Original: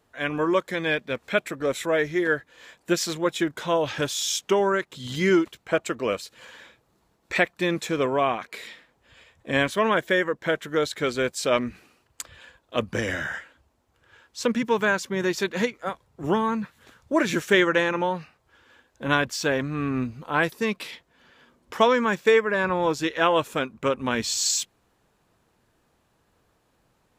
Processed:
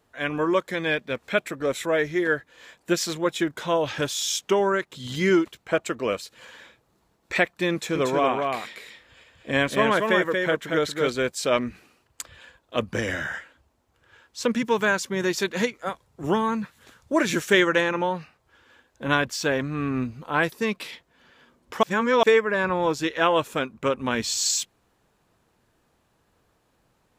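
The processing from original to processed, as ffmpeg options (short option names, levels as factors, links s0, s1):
-filter_complex "[0:a]asettb=1/sr,asplit=3[s0][s1][s2];[s0]atrim=end=7.724[s3];[s1]atrim=start=7.72:end=11.1,asetpts=PTS-STARTPTS,afade=t=in:d=0.004:c=qsin,afade=t=out:st=3.376:d=0.004:c=qsin,aecho=1:1:233:0.631,atrim=end_sample=149058[s4];[s2]atrim=start=11.096[s5];[s3][s4]acrossfade=d=0.004:c1=hsin:c2=qsin[s6];[s6][s5]acrossfade=d=0.004:c1=qsin:c2=hsin,asettb=1/sr,asplit=3[s7][s8][s9];[s7]atrim=end=14.514[s10];[s8]atrim=start=14.51:end=17.81,asetpts=PTS-STARTPTS,afade=t=in:d=0.004:c=qsin,afade=t=out:st=3.296:d=0.004:c=qsin,equalizer=f=9100:t=o:w=2.1:g=4[s11];[s9]atrim=start=17.806[s12];[s10][s11]acrossfade=d=0.004:c1=hsin:c2=qsin[s13];[s13][s12]acrossfade=d=0.004:c1=qsin:c2=hsin,asplit=3[s14][s15][s16];[s14]atrim=end=21.832[s17];[s15]atrim=start=21.828:end=22.232,asetpts=PTS-STARTPTS,areverse[s18];[s16]atrim=start=22.228[s19];[s17][s18]acrossfade=d=0.004:c1=hsin:c2=hsin[s20];[s20][s19]acrossfade=d=0.004:c1=hsin:c2=hsin"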